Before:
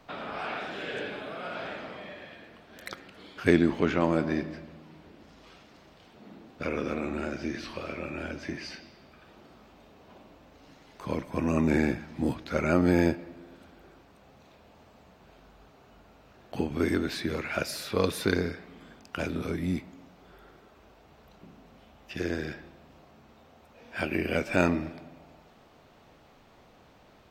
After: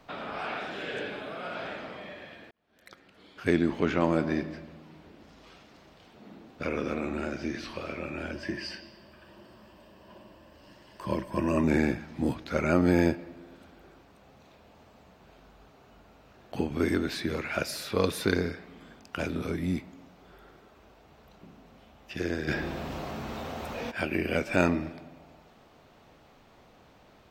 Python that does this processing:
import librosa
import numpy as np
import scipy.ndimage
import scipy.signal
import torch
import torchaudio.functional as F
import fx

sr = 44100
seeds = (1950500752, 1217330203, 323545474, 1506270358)

y = fx.ripple_eq(x, sr, per_octave=1.3, db=9, at=(8.33, 11.64))
y = fx.env_flatten(y, sr, amount_pct=50, at=(22.47, 23.9), fade=0.02)
y = fx.edit(y, sr, fx.fade_in_span(start_s=2.51, length_s=1.51), tone=tone)